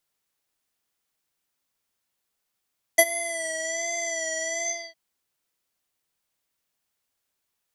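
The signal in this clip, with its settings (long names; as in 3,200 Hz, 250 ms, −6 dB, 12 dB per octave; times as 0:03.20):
subtractive patch with vibrato E5, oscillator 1 square, oscillator 2 square, interval +19 semitones, detune 20 cents, oscillator 2 level −1.5 dB, sub −17 dB, noise −20.5 dB, filter lowpass, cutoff 4,100 Hz, Q 9.8, filter envelope 1.5 octaves, filter decay 0.77 s, filter sustain 50%, attack 12 ms, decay 0.05 s, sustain −19 dB, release 0.31 s, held 1.65 s, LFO 1.3 Hz, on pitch 52 cents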